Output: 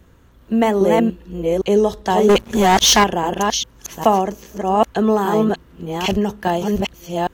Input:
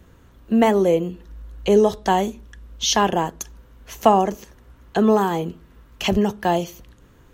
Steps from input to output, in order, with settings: reverse delay 0.404 s, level -1 dB; 2.29–3.04 sample leveller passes 3

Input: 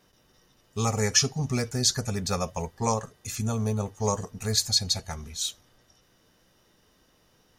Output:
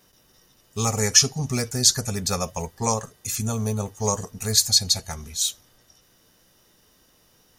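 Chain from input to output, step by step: high shelf 6300 Hz +11 dB; gain +1.5 dB

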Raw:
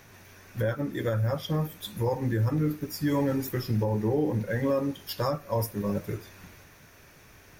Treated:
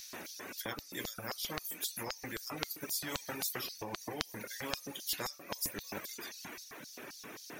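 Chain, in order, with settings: LFO high-pass square 3.8 Hz 290–4600 Hz; reverb removal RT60 1.4 s; spectral compressor 4:1; gain +2 dB

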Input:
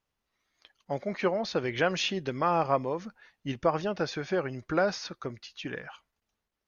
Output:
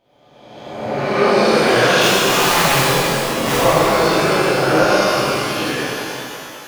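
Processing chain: spectral swells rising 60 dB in 1.37 s; 2.01–3.58 wrapped overs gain 18 dB; shimmer reverb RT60 2.8 s, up +12 st, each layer -8 dB, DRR -10.5 dB

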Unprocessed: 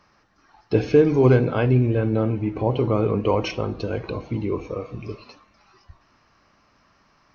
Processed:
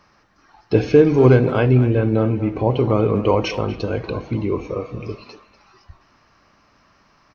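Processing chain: speakerphone echo 0.24 s, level -13 dB; gain +3.5 dB

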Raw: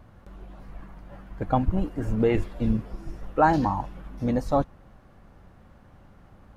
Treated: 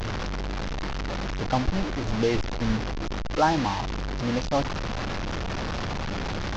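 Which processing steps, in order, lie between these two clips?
delta modulation 32 kbps, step -21.5 dBFS; gain -2 dB

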